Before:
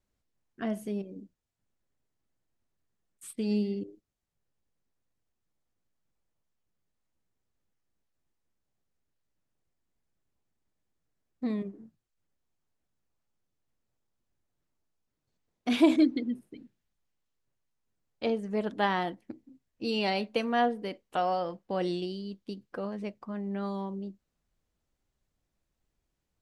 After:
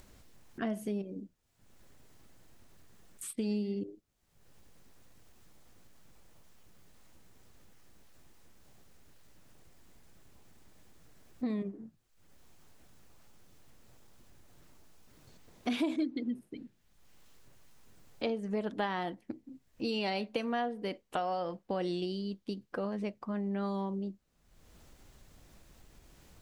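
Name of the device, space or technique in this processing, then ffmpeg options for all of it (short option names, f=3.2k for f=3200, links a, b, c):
upward and downward compression: -af "acompressor=mode=upward:threshold=-41dB:ratio=2.5,acompressor=threshold=-33dB:ratio=4,volume=2dB"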